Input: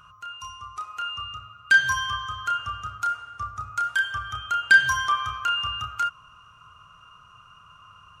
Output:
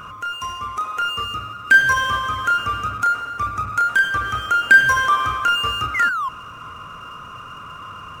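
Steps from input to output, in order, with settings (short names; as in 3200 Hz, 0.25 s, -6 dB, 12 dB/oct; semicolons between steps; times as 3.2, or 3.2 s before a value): painted sound fall, 5.94–6.29, 1000–2200 Hz -33 dBFS; power-law curve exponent 0.7; ten-band EQ 250 Hz +10 dB, 500 Hz +8 dB, 2000 Hz +5 dB, 4000 Hz -7 dB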